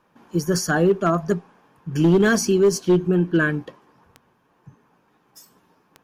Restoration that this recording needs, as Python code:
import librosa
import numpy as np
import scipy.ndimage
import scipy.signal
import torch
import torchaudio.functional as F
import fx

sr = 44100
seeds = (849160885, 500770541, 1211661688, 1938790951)

y = fx.fix_declip(x, sr, threshold_db=-10.5)
y = fx.fix_declick_ar(y, sr, threshold=10.0)